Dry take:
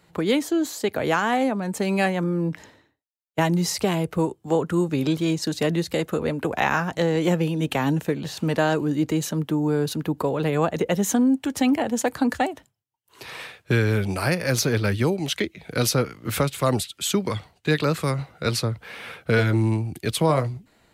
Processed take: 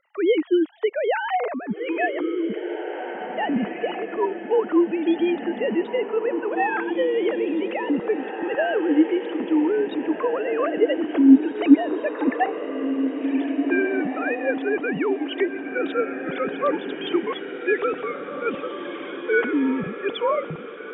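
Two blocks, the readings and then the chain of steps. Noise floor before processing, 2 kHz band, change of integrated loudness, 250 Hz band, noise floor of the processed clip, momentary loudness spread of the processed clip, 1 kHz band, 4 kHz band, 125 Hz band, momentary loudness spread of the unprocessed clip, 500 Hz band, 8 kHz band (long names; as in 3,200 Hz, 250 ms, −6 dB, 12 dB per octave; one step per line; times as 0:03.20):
−68 dBFS, +0.5 dB, +0.5 dB, +2.5 dB, −35 dBFS, 9 LU, 0.0 dB, −7.0 dB, below −20 dB, 6 LU, +2.5 dB, below −40 dB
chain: three sine waves on the formant tracks
on a send: feedback delay with all-pass diffusion 1,950 ms, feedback 43%, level −7 dB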